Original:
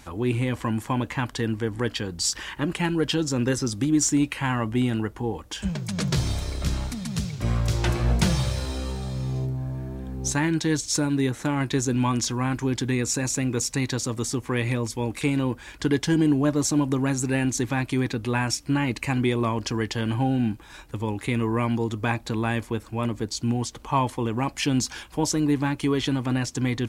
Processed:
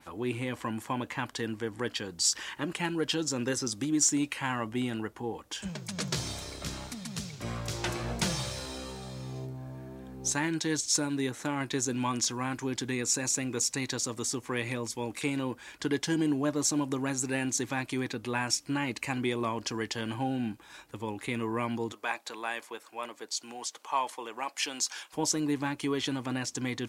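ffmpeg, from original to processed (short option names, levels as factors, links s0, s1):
-filter_complex "[0:a]asettb=1/sr,asplit=3[s0][s1][s2];[s0]atrim=end=21.924[s3];[s1]atrim=start=21.92:end=25.13,asetpts=PTS-STARTPTS,afade=t=in:d=0.004:c=qsin,afade=t=out:st=3.206:d=0.004:c=qsin,highpass=560[s4];[s2]atrim=start=25.126[s5];[s3][s4]acrossfade=d=0.004:c1=hsin:c2=qsin[s6];[s6][s5]acrossfade=d=0.004:c1=qsin:c2=hsin,adynamicequalizer=threshold=0.0126:dfrequency=6700:dqfactor=0.95:tfrequency=6700:tqfactor=0.95:attack=5:release=100:ratio=0.375:range=2:mode=boostabove:tftype=bell,highpass=f=290:p=1,volume=0.596"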